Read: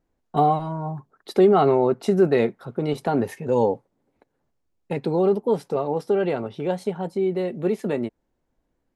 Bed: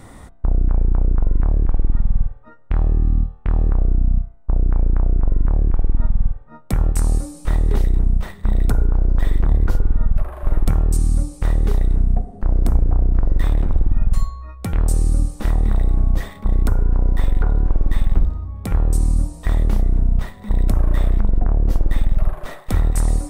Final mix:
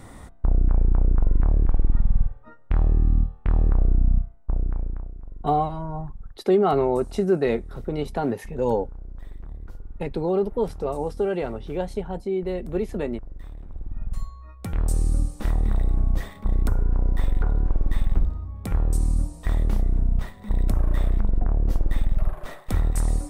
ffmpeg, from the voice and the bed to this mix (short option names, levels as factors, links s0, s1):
-filter_complex "[0:a]adelay=5100,volume=0.708[s0];[1:a]volume=5.31,afade=t=out:st=4.13:d=1:silence=0.105925,afade=t=in:st=13.67:d=1.32:silence=0.141254[s1];[s0][s1]amix=inputs=2:normalize=0"